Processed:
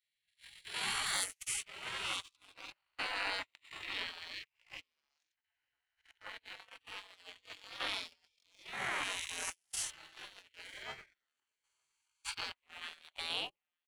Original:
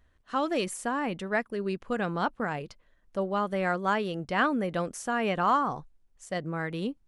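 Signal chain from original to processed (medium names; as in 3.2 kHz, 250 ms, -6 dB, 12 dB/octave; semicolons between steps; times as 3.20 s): reverse spectral sustain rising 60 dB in 1.48 s; tempo 0.51×; tone controls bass +2 dB, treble -7 dB; compression 2.5:1, threshold -29 dBFS, peak gain reduction 8.5 dB; Chebyshev shaper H 3 -33 dB, 8 -31 dB, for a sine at -12.5 dBFS; level held to a coarse grid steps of 11 dB; hum notches 50/100/150 Hz; spectral gate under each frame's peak -25 dB weak; bass shelf 320 Hz -8.5 dB; delay 920 ms -16.5 dB; gate -52 dBFS, range -31 dB; waveshaping leveller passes 1; trim +10 dB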